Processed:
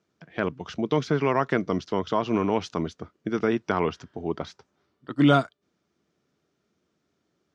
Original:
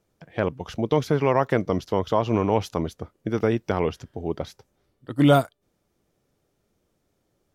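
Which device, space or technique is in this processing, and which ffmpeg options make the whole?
car door speaker: -filter_complex "[0:a]highpass=82,highpass=80,equalizer=f=110:t=q:w=4:g=-10,equalizer=f=530:t=q:w=4:g=-7,equalizer=f=820:t=q:w=4:g=-5,equalizer=f=1400:t=q:w=4:g=3,lowpass=f=6500:w=0.5412,lowpass=f=6500:w=1.3066,asettb=1/sr,asplit=3[s0][s1][s2];[s0]atrim=end=3.484[s3];[s1]atrim=start=3.48:end=5.15,asetpts=PTS-STARTPTS,afade=t=in:d=0.004:c=qsin,afade=t=out:st=1.666:d=0.004:c=qsin,equalizer=f=960:w=1.3:g=5[s4];[s2]atrim=start=5.146[s5];[s3][s4]acrossfade=d=0.004:c1=hsin:c2=qsin[s6];[s6][s5]acrossfade=d=0.004:c1=qsin:c2=hsin"

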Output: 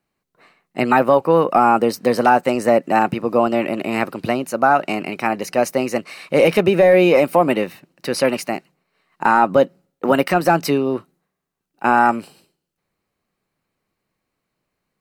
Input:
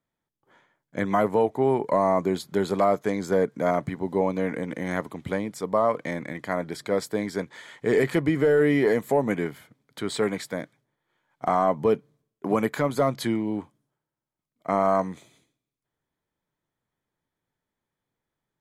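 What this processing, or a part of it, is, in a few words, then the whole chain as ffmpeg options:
nightcore: -af "asetrate=54684,aresample=44100,volume=2.51"

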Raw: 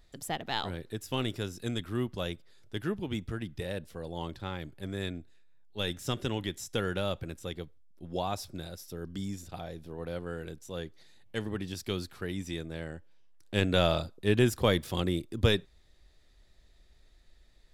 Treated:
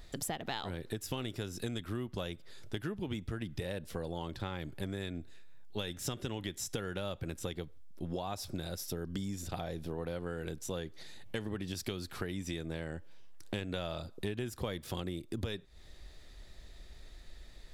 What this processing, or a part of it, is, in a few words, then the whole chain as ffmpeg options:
serial compression, peaks first: -af "acompressor=threshold=0.0126:ratio=5,acompressor=threshold=0.00398:ratio=2,volume=2.99"

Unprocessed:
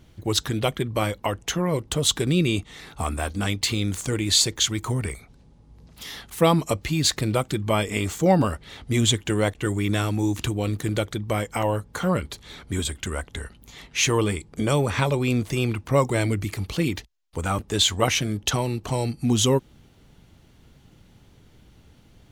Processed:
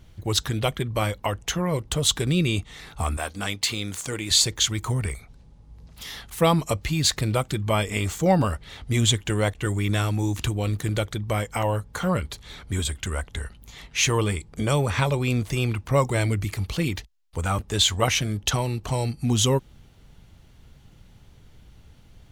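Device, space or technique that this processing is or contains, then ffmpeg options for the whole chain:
low shelf boost with a cut just above: -filter_complex "[0:a]lowshelf=f=68:g=7.5,equalizer=f=300:t=o:w=1.2:g=-4.5,asettb=1/sr,asplit=3[s0][s1][s2];[s0]atrim=end=3.174[s3];[s1]atrim=start=3.17:end=4.31,asetpts=PTS-STARTPTS,afade=t=in:d=0.004:c=qsin,afade=t=out:st=1.136:d=0.004:c=qsin,highpass=f=290:p=1[s4];[s2]atrim=start=4.306[s5];[s3][s4]acrossfade=d=0.004:c1=hsin:c2=qsin[s6];[s6][s5]acrossfade=d=0.004:c1=qsin:c2=hsin"

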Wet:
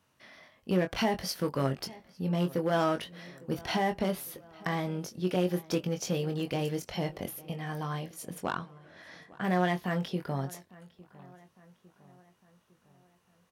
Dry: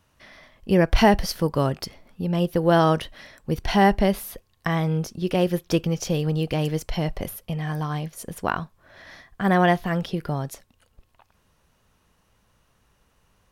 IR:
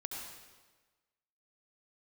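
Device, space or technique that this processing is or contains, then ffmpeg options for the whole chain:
limiter into clipper: -filter_complex "[0:a]alimiter=limit=0.282:level=0:latency=1:release=138,asoftclip=type=hard:threshold=0.168,asettb=1/sr,asplit=3[s0][s1][s2];[s0]atrim=end=8.444[s3];[s1]atrim=start=8.44:end=9.43,asetpts=PTS-STARTPTS,afade=t=in:d=0.004:c=qsin,afade=t=out:st=0.986:d=0.004:c=qsin,lowpass=f=11000:w=0.5412,lowpass=f=11000:w=1.3066[s4];[s2]atrim=start=9.426[s5];[s3][s4]acrossfade=d=0.004:c1=hsin:c2=qsin[s6];[s6][s5]acrossfade=d=0.004:c1=qsin:c2=hsin,highpass=130,asplit=2[s7][s8];[s8]adelay=22,volume=0.473[s9];[s7][s9]amix=inputs=2:normalize=0,asplit=2[s10][s11];[s11]adelay=855,lowpass=f=2700:p=1,volume=0.0891,asplit=2[s12][s13];[s13]adelay=855,lowpass=f=2700:p=1,volume=0.52,asplit=2[s14][s15];[s15]adelay=855,lowpass=f=2700:p=1,volume=0.52,asplit=2[s16][s17];[s17]adelay=855,lowpass=f=2700:p=1,volume=0.52[s18];[s10][s12][s14][s16][s18]amix=inputs=5:normalize=0,volume=0.501"

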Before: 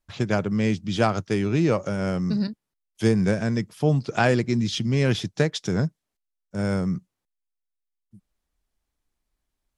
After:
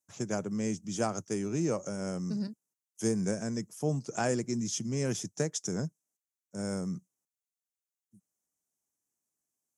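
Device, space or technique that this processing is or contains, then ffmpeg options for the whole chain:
budget condenser microphone: -af "highpass=71,highpass=140,equalizer=f=2300:t=o:w=2.2:g=-5,highshelf=f=5100:t=q:w=3:g=8.5,volume=0.398"

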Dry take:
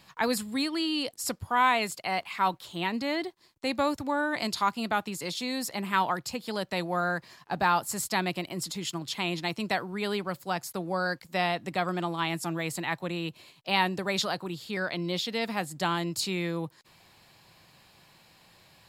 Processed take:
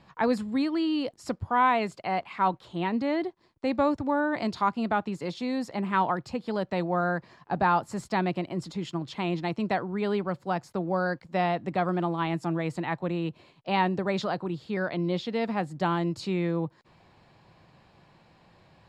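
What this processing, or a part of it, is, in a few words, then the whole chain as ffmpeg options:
through cloth: -af "lowpass=6800,highshelf=f=2000:g=-16,volume=1.68"

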